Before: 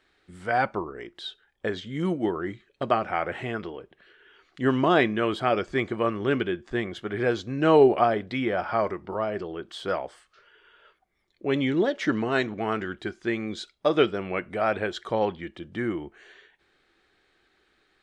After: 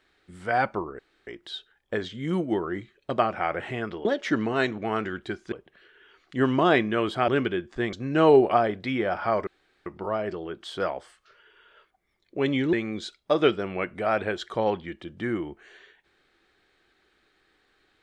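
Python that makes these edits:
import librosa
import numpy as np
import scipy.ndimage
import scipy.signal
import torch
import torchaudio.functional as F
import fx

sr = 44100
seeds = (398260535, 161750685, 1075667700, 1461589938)

y = fx.edit(x, sr, fx.insert_room_tone(at_s=0.99, length_s=0.28),
    fx.cut(start_s=5.53, length_s=0.7),
    fx.cut(start_s=6.88, length_s=0.52),
    fx.insert_room_tone(at_s=8.94, length_s=0.39),
    fx.move(start_s=11.81, length_s=1.47, to_s=3.77), tone=tone)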